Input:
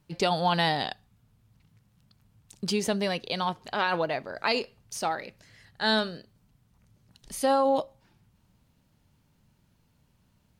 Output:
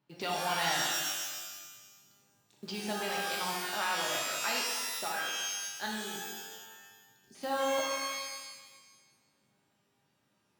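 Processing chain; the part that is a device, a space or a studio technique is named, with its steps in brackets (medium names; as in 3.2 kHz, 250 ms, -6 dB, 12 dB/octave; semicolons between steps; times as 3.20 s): early digital voice recorder (band-pass 220–4000 Hz; block-companded coder 5-bit); 5.86–7.35 s: elliptic band-stop 410–5100 Hz; dynamic bell 420 Hz, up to -8 dB, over -39 dBFS, Q 0.95; pitch-shifted reverb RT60 1.3 s, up +12 st, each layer -2 dB, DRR -1.5 dB; trim -8 dB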